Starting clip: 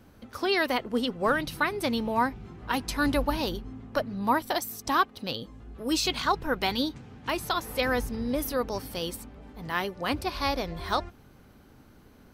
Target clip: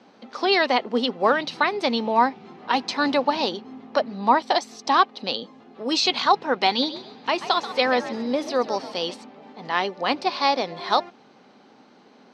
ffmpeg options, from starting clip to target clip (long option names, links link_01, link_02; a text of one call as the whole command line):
ffmpeg -i in.wav -filter_complex "[0:a]highpass=frequency=220:width=0.5412,highpass=frequency=220:width=1.3066,equalizer=frequency=310:width_type=q:width=4:gain=-5,equalizer=frequency=800:width_type=q:width=4:gain=5,equalizer=frequency=1500:width_type=q:width=4:gain=-4,equalizer=frequency=4100:width_type=q:width=4:gain=3,lowpass=frequency=5700:width=0.5412,lowpass=frequency=5700:width=1.3066,asettb=1/sr,asplit=3[link_01][link_02][link_03];[link_01]atrim=end=6.694[link_04];[link_02]atrim=start=6.69:end=9.14,asetpts=PTS-STARTPTS,afade=type=in:duration=0.004:curve=qsin,afade=type=out:start_time=2.446:duration=0.004:curve=qsin,asplit=4[link_05][link_06][link_07][link_08];[link_06]adelay=134,afreqshift=67,volume=-13dB[link_09];[link_07]adelay=268,afreqshift=134,volume=-23.2dB[link_10];[link_08]adelay=402,afreqshift=201,volume=-33.3dB[link_11];[link_05][link_09][link_10][link_11]amix=inputs=4:normalize=0,atrim=end_sample=108045[link_12];[link_03]atrim=start=9.136[link_13];[link_04][link_12]acrossfade=duration=0.004:curve1=hsin:curve2=qsin[link_14];[link_14][link_13]acrossfade=duration=0.004:curve1=qsin:curve2=hsin,volume=6dB" out.wav